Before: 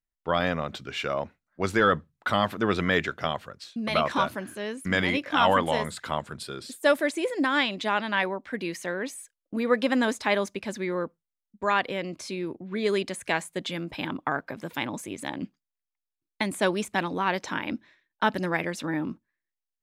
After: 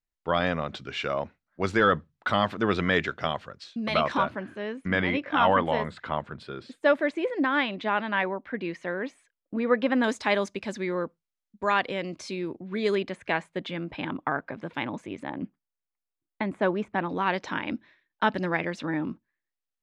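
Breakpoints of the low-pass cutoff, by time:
5.7 kHz
from 4.17 s 2.6 kHz
from 10.04 s 6.9 kHz
from 12.95 s 2.9 kHz
from 15.23 s 1.7 kHz
from 17.09 s 4.2 kHz

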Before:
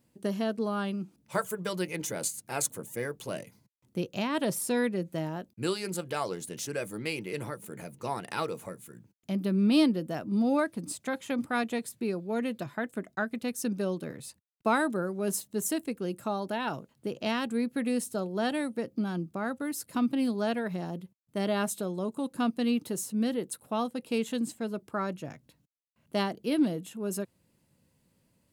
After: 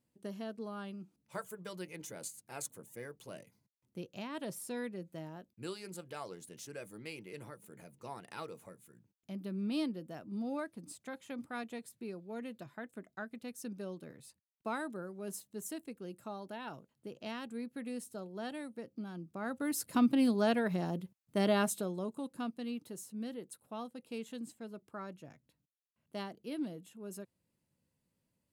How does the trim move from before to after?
19.19 s -12 dB
19.74 s 0 dB
21.51 s 0 dB
22.62 s -12.5 dB

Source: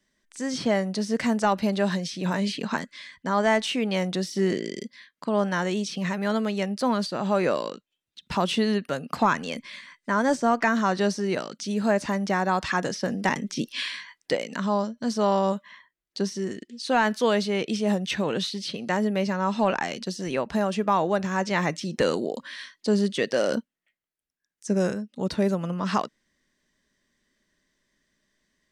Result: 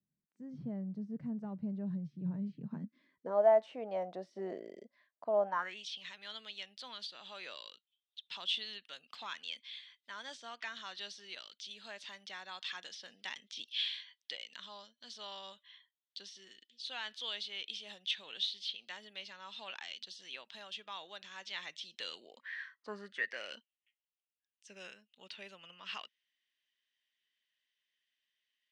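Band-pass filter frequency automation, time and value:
band-pass filter, Q 5.1
2.67 s 140 Hz
3.45 s 680 Hz
5.45 s 680 Hz
5.86 s 3.4 kHz
22.08 s 3.4 kHz
22.91 s 1.1 kHz
23.56 s 2.9 kHz

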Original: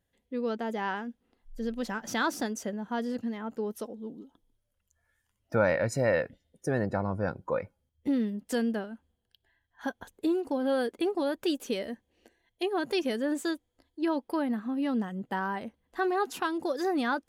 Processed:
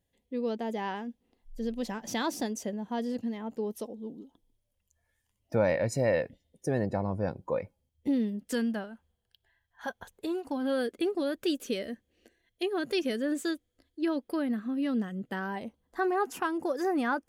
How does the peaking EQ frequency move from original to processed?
peaking EQ -11 dB 0.51 oct
8.33 s 1.4 kHz
8.86 s 280 Hz
10.35 s 280 Hz
10.78 s 890 Hz
15.37 s 890 Hz
16.12 s 3.9 kHz

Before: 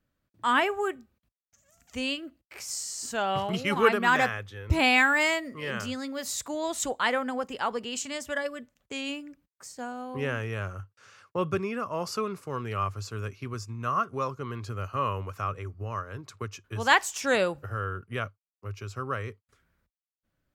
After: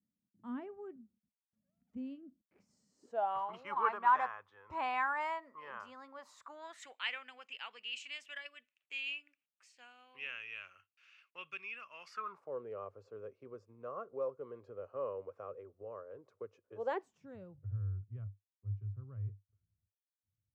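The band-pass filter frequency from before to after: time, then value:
band-pass filter, Q 5.2
2.89 s 210 Hz
3.30 s 1 kHz
6.32 s 1 kHz
7.03 s 2.6 kHz
12.03 s 2.6 kHz
12.54 s 510 Hz
16.91 s 510 Hz
17.32 s 100 Hz

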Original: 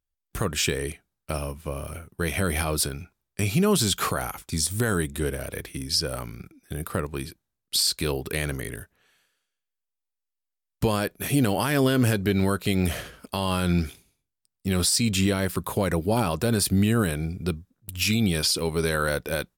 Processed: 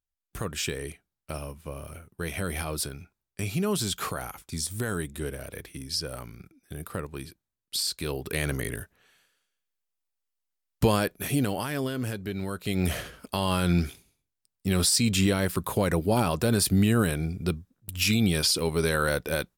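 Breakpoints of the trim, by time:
8.01 s -6 dB
8.59 s +1.5 dB
10.91 s +1.5 dB
11.94 s -10 dB
12.47 s -10 dB
12.91 s -0.5 dB

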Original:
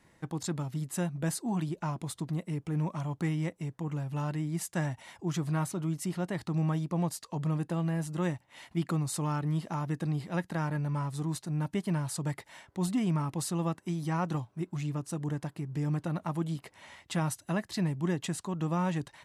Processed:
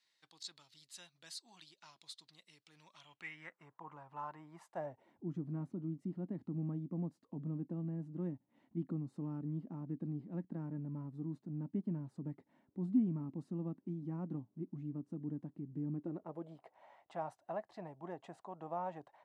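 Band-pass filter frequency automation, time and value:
band-pass filter, Q 3.4
2.91 s 4.2 kHz
3.75 s 990 Hz
4.64 s 990 Hz
5.19 s 250 Hz
15.92 s 250 Hz
16.58 s 710 Hz

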